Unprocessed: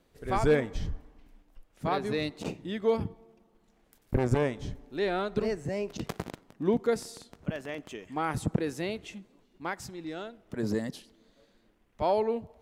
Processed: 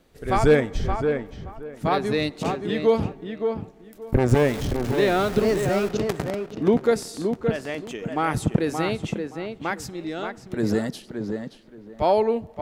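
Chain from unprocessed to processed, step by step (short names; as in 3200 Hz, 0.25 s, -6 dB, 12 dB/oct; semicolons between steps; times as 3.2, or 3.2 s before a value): 4.28–5.89 zero-crossing step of -35 dBFS; notch 1000 Hz, Q 20; tape echo 0.573 s, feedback 22%, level -4.5 dB, low-pass 2000 Hz; gain +7 dB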